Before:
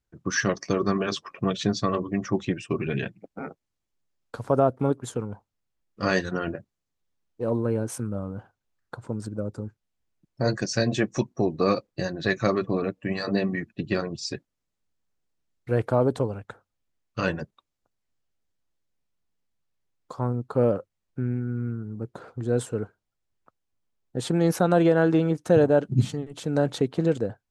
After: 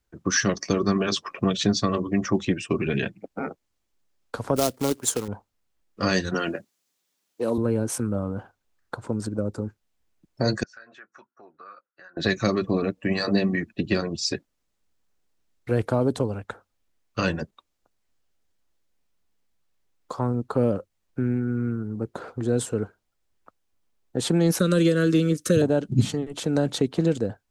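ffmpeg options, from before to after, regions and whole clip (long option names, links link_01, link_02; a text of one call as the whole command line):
ffmpeg -i in.wav -filter_complex "[0:a]asettb=1/sr,asplit=3[link_01][link_02][link_03];[link_01]atrim=end=4.564[link_04];[link_02]atrim=start=4.56:end=5.28,asetpts=PTS-STARTPTS,afade=type=in:duration=0.004:curve=qsin,afade=type=out:start_time=0.716:duration=0.004:curve=qsin,bass=frequency=250:gain=-7,treble=frequency=4000:gain=10,acrusher=bits=3:mode=log:mix=0:aa=0.000001[link_05];[link_03]atrim=start=5.276[link_06];[link_04][link_05]acrossfade=duration=0.004:curve1=hsin:curve2=qsin[link_07];[link_07][link_06]acrossfade=duration=0.004:curve1=qsin:curve2=hsin,asettb=1/sr,asplit=3[link_08][link_09][link_10];[link_08]atrim=end=6.344[link_11];[link_09]atrim=start=6.34:end=7.58,asetpts=PTS-STARTPTS,afade=type=in:duration=0.004:curve=qsin,afade=type=out:start_time=1.236:duration=0.004:curve=qsin,highpass=190,highshelf=frequency=2400:gain=10.5[link_12];[link_10]atrim=start=7.576[link_13];[link_11][link_12]acrossfade=duration=0.004:curve1=hsin:curve2=qsin[link_14];[link_14][link_13]acrossfade=duration=0.004:curve1=qsin:curve2=hsin,asettb=1/sr,asplit=3[link_15][link_16][link_17];[link_15]atrim=end=10.634[link_18];[link_16]atrim=start=10.63:end=12.17,asetpts=PTS-STARTPTS,afade=type=in:duration=0.004:curve=qsin,afade=type=out:start_time=1.536:duration=0.004:curve=qsin,bandpass=frequency=1400:width_type=q:width=10,acompressor=threshold=-51dB:ratio=3:attack=3.2:release=140:knee=1:detection=peak[link_19];[link_17]atrim=start=12.166[link_20];[link_18][link_19]acrossfade=duration=0.004:curve1=hsin:curve2=qsin[link_21];[link_21][link_20]acrossfade=duration=0.004:curve1=qsin:curve2=hsin,asettb=1/sr,asplit=3[link_22][link_23][link_24];[link_22]atrim=end=24.594[link_25];[link_23]atrim=start=24.59:end=25.62,asetpts=PTS-STARTPTS,afade=type=in:duration=0.004:curve=qsin,afade=type=out:start_time=1.026:duration=0.004:curve=qsin,asuperstop=centerf=810:order=8:qfactor=1.7,highshelf=frequency=4500:gain=11.5[link_26];[link_24]atrim=start=25.616[link_27];[link_25][link_26]acrossfade=duration=0.004:curve1=hsin:curve2=qsin[link_28];[link_28][link_27]acrossfade=duration=0.004:curve1=qsin:curve2=hsin,equalizer=frequency=130:width_type=o:width=0.8:gain=-6.5,acrossover=split=260|3000[link_29][link_30][link_31];[link_30]acompressor=threshold=-34dB:ratio=2.5[link_32];[link_29][link_32][link_31]amix=inputs=3:normalize=0,volume=6.5dB" out.wav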